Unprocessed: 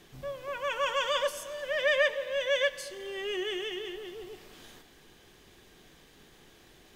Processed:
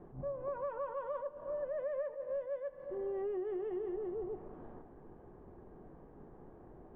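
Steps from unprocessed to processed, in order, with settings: low-pass 1 kHz 24 dB/octave; compression 12:1, threshold -40 dBFS, peak gain reduction 17 dB; attacks held to a fixed rise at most 160 dB/s; trim +5 dB

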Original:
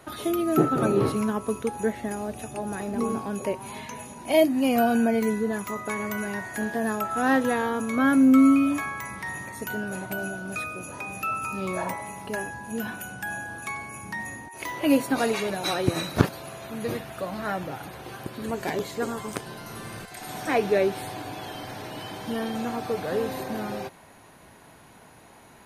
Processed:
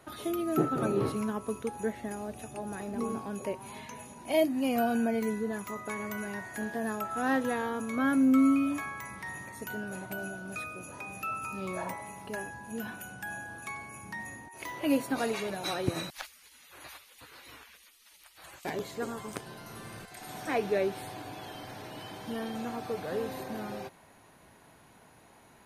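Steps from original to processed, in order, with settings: 16.10–18.65 s: spectral gate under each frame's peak -20 dB weak; trim -6.5 dB

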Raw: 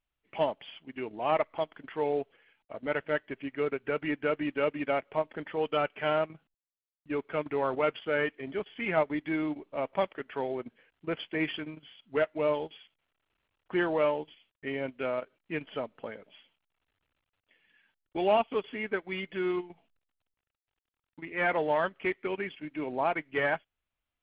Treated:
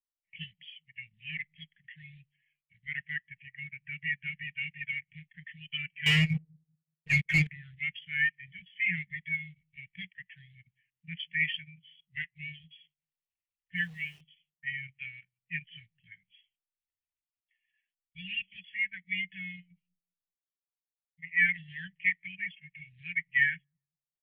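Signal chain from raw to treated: Chebyshev band-stop 180–1800 Hz, order 5; peaking EQ 2 kHz +5 dB 2.1 oct; 3.15–3.91 s: low-pass 3.6 kHz; 6.06–7.47 s: waveshaping leveller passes 5; 13.76–14.21 s: word length cut 8-bit, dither none; on a send: feedback echo behind a low-pass 191 ms, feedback 33%, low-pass 450 Hz, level -21 dB; on the sum: spectral contrast expander 1.5:1; trim +4.5 dB

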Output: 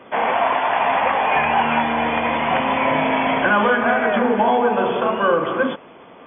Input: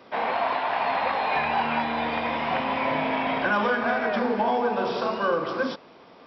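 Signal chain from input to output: brick-wall FIR low-pass 3.5 kHz; trim +7 dB

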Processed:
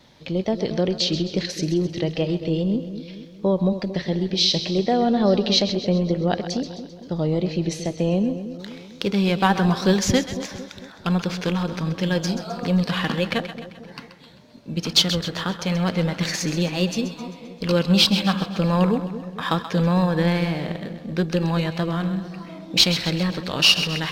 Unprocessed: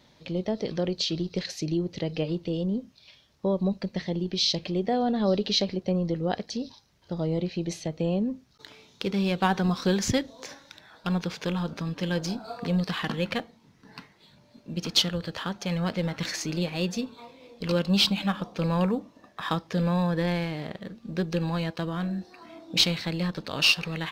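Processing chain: wow and flutter 45 cents; two-band feedback delay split 640 Hz, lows 226 ms, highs 131 ms, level -11 dB; trim +5.5 dB

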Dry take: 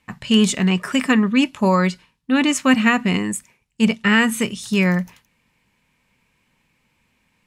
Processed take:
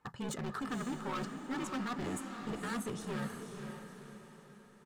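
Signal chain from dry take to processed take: high-pass 84 Hz 12 dB/octave; resonant high shelf 1.8 kHz -8.5 dB, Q 3; comb 2.4 ms, depth 37%; reverse; compression, threshold -25 dBFS, peak gain reduction 14.5 dB; reverse; overload inside the chain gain 30 dB; granular stretch 0.65×, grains 30 ms; on a send: echo that smears into a reverb 519 ms, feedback 45%, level -6 dB; on the sum: trim -4.5 dB

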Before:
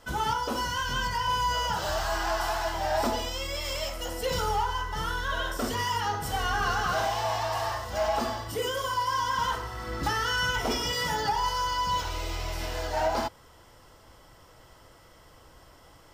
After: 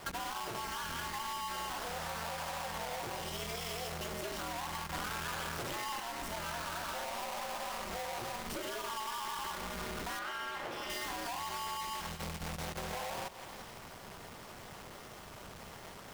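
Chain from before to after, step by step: square wave that keeps the level; peak limiter -27.5 dBFS, peak gain reduction 34 dB; 4.94–6.00 s: companded quantiser 2-bit; bass shelf 340 Hz -7 dB; hum notches 50/100 Hz; thinning echo 171 ms, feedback 59%, level -17 dB; ring modulator 120 Hz; 10.19–10.90 s: tone controls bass -9 dB, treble -11 dB; compression 6:1, threshold -43 dBFS, peak gain reduction 15 dB; trim +5.5 dB

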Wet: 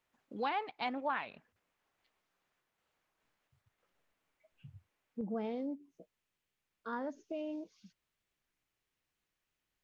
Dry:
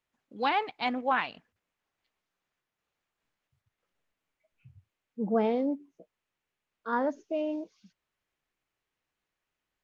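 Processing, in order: peaking EQ 800 Hz +3.5 dB 3 oct, from 5.21 s -5 dB; compression 2:1, threshold -43 dBFS, peak gain reduction 13 dB; warped record 33 1/3 rpm, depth 160 cents; trim +1 dB

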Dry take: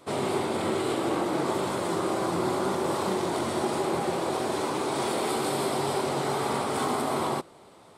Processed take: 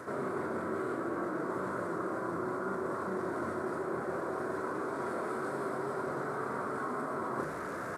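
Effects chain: one-bit delta coder 64 kbps, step -35.5 dBFS; resonant high shelf 2.1 kHz -12.5 dB, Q 3; hum notches 50/100/150 Hz; doubling 32 ms -10.5 dB; reverse; compression 12:1, threshold -34 dBFS, peak gain reduction 13.5 dB; reverse; high-pass 74 Hz; peaking EQ 830 Hz -12 dB 0.29 oct; band-stop 1.2 kHz, Q 27; trim +3.5 dB

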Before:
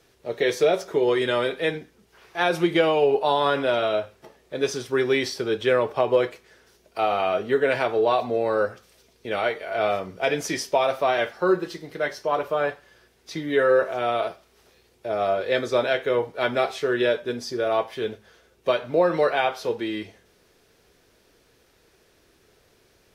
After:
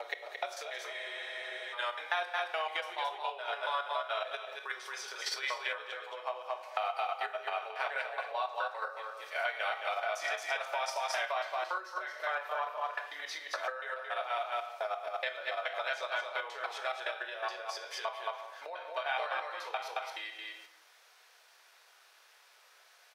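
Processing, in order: slices played last to first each 141 ms, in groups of 3; delay 222 ms -5 dB; on a send at -4.5 dB: reverberation RT60 0.75 s, pre-delay 13 ms; on the sum: compression 12:1, threshold -30 dBFS, peak gain reduction 18.5 dB; inverse Chebyshev high-pass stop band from 170 Hz, stop band 70 dB; treble shelf 5.8 kHz -5 dB; in parallel at -1 dB: level held to a coarse grid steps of 20 dB; on the sum: spectral freeze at 0.96 s, 0.77 s

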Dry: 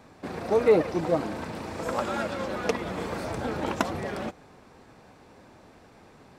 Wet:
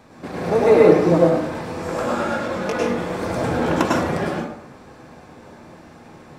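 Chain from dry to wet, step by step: 1.18–3.23 s: chorus 2.6 Hz, delay 20 ms, depth 2.5 ms; plate-style reverb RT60 0.73 s, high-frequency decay 0.6×, pre-delay 90 ms, DRR -4.5 dB; trim +3 dB

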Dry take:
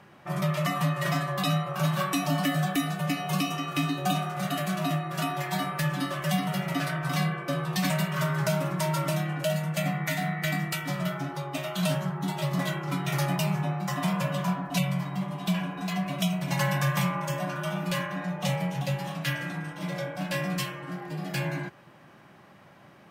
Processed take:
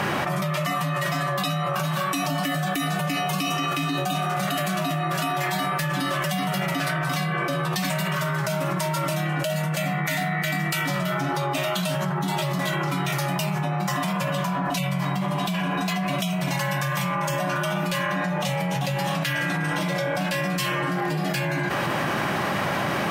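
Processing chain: bass shelf 410 Hz -4.5 dB; level flattener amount 100%

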